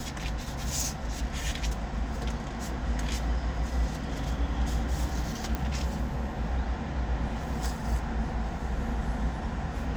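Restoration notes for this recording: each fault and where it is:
0:05.55: click −17 dBFS

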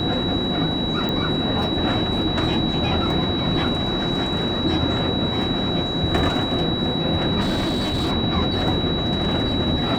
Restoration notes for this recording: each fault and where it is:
whistle 3,900 Hz −26 dBFS
0:01.09: click −13 dBFS
0:07.40–0:08.12: clipping −18.5 dBFS

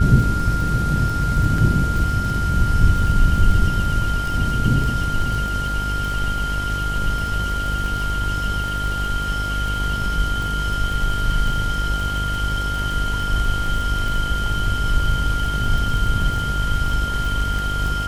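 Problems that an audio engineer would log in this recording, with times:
mains buzz 50 Hz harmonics 20 −25 dBFS
surface crackle 39 per second −25 dBFS
whistle 1,400 Hz −24 dBFS
0:01.58: drop-out 3 ms

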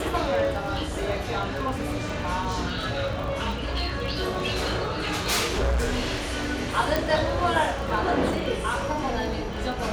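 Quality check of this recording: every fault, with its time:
surface crackle 19 per second −31 dBFS
0:02.42–0:06.23: clipping −20 dBFS
0:06.96: click

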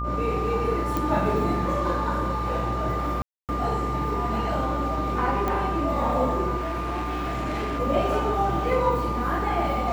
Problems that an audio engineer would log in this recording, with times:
mains buzz 60 Hz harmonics 22 −30 dBFS
whistle 1,200 Hz −29 dBFS
0:00.97: click
0:03.22–0:03.49: drop-out 268 ms
0:05.48: click −14 dBFS
0:06.57–0:07.80: clipping −25 dBFS

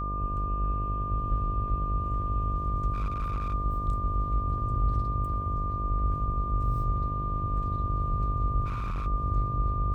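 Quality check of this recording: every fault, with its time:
mains buzz 50 Hz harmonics 14 −33 dBFS
whistle 1,200 Hz −32 dBFS
0:02.93–0:03.54: clipping −26 dBFS
0:08.65–0:09.07: clipping −28.5 dBFS

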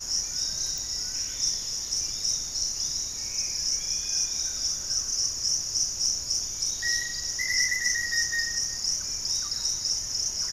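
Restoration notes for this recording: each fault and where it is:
0:00.78: click

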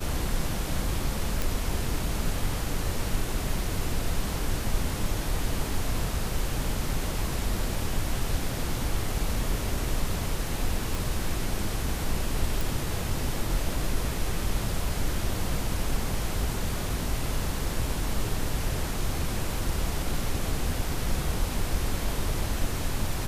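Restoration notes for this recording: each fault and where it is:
0:01.42: click
0:10.95: click
0:12.61: click

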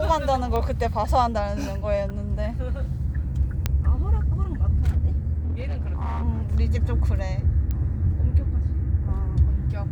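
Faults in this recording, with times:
0:00.56: click −15 dBFS
0:02.10: drop-out 3.1 ms
0:03.66: click −8 dBFS
0:05.39–0:06.23: clipping −23 dBFS
0:07.71: click −16 dBFS

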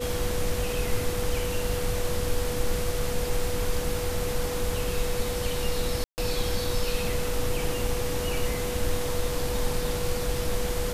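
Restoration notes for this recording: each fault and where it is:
whistle 490 Hz −31 dBFS
0:06.04–0:06.18: drop-out 139 ms

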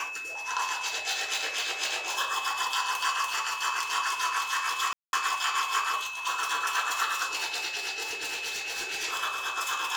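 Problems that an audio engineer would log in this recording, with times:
whistle 2,600 Hz −35 dBFS
0:04.93–0:05.13: drop-out 201 ms
0:08.08–0:09.05: clipping −29 dBFS

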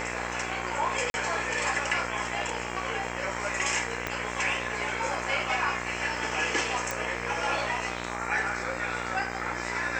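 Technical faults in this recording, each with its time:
mains buzz 60 Hz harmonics 40 −36 dBFS
0:01.10–0:01.14: drop-out 41 ms
0:04.07: click −14 dBFS
0:06.91: click

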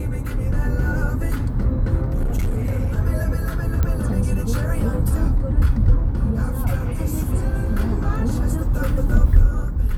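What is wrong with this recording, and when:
0:02.14–0:02.91: clipping −16.5 dBFS
0:03.83: click −9 dBFS

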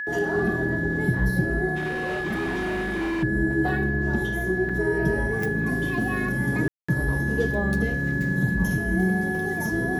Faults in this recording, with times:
whistle 1,700 Hz −28 dBFS
0:01.75–0:03.24: clipping −24 dBFS
0:04.69: drop-out 4.9 ms
0:06.68–0:06.88: drop-out 205 ms

